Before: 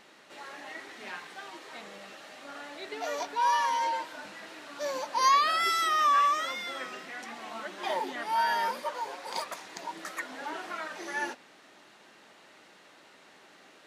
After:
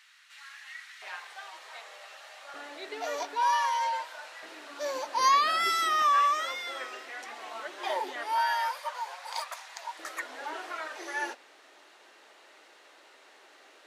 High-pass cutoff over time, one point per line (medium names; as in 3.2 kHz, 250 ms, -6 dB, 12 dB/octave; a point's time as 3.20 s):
high-pass 24 dB/octave
1.4 kHz
from 1.02 s 600 Hz
from 2.54 s 280 Hz
from 3.43 s 550 Hz
from 4.43 s 270 Hz
from 5.20 s 130 Hz
from 6.02 s 350 Hz
from 8.38 s 680 Hz
from 9.99 s 340 Hz